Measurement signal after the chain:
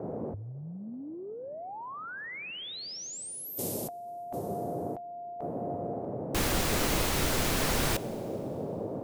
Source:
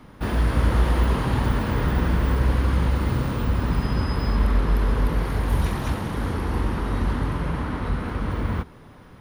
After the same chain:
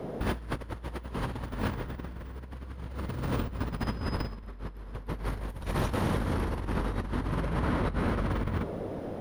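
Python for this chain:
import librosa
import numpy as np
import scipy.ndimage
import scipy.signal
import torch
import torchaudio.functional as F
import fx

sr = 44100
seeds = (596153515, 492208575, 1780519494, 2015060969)

y = fx.dmg_noise_band(x, sr, seeds[0], low_hz=100.0, high_hz=630.0, level_db=-37.0)
y = fx.rev_schroeder(y, sr, rt60_s=2.5, comb_ms=32, drr_db=18.0)
y = fx.over_compress(y, sr, threshold_db=-26.0, ratio=-0.5)
y = F.gain(torch.from_numpy(y), -5.5).numpy()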